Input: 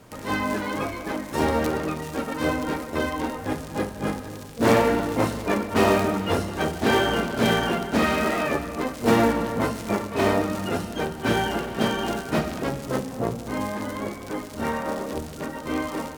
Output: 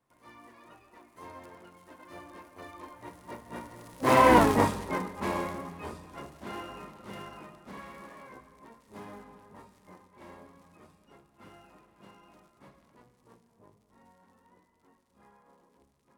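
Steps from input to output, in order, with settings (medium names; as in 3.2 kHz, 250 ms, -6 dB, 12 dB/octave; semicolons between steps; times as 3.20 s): Doppler pass-by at 4.40 s, 43 m/s, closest 3.9 m; graphic EQ with 31 bands 1 kHz +10 dB, 2 kHz +4 dB, 10 kHz +5 dB; trim +5 dB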